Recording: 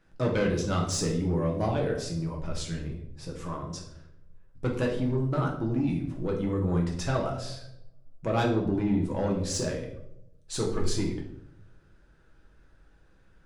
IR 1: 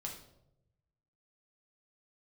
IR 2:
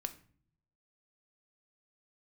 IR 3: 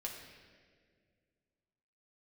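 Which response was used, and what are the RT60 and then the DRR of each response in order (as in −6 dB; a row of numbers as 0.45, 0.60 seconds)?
1; 0.85 s, non-exponential decay, 1.9 s; −1.0, 7.5, −1.5 decibels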